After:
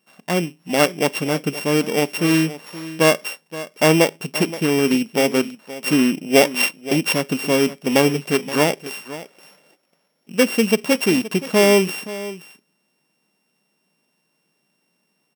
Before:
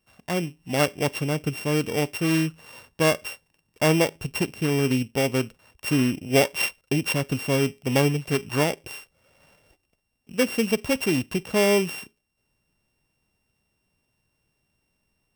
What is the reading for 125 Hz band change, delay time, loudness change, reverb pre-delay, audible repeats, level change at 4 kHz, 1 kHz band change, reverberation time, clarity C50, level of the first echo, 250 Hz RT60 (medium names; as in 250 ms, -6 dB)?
0.0 dB, 523 ms, +5.5 dB, no reverb, 1, +6.0 dB, +6.0 dB, no reverb, no reverb, -15.5 dB, no reverb